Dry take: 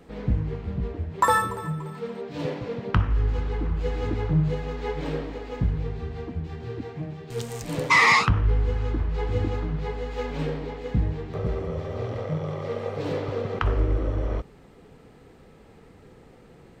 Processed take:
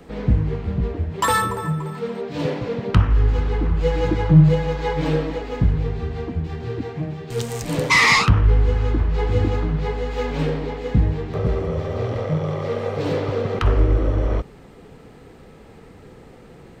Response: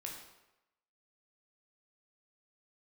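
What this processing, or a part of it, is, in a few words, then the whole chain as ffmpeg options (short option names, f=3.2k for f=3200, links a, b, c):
one-band saturation: -filter_complex "[0:a]acrossover=split=310|2400[a][b][c];[b]asoftclip=type=tanh:threshold=-23dB[d];[a][d][c]amix=inputs=3:normalize=0,asettb=1/sr,asplit=3[e][f][g];[e]atrim=end=3.824[h];[f]atrim=start=3.82:end=5.42,asetpts=PTS-STARTPTS,afade=t=in:d=0.004:c=qsin,afade=t=out:st=1.596:d=0.004:c=qsin,aecho=1:1:6.1:0.72,atrim=end_sample=70560[i];[g]atrim=start=5.416[j];[h][i]acrossfade=d=0.004:c1=hsin:c2=qsin[k];[k][j]acrossfade=d=0.004:c1=qsin:c2=hsin,volume=6.5dB"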